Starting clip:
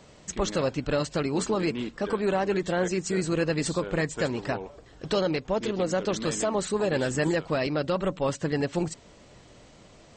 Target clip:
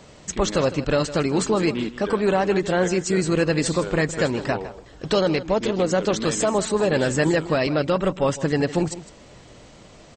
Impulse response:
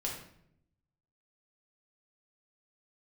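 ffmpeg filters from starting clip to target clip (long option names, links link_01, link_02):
-filter_complex "[0:a]asettb=1/sr,asplit=3[link_01][link_02][link_03];[link_01]atrim=end=7.804[link_04];[link_02]atrim=start=7.8:end=8.43,asetpts=PTS-STARTPTS,afade=type=in:duration=0.004:curve=qsin,afade=type=out:start_time=0.626:duration=0.004:curve=qsin,bandreject=frequency=4300:width=8[link_05];[link_03]atrim=start=8.426[link_06];[link_04][link_05]acrossfade=duration=0.004:curve1=hsin:curve2=qsin[link_07];[link_07][link_06]acrossfade=duration=0.004:curve1=qsin:curve2=hsin,asplit=2[link_08][link_09];[link_09]aecho=0:1:157:0.178[link_10];[link_08][link_10]amix=inputs=2:normalize=0,volume=5.5dB"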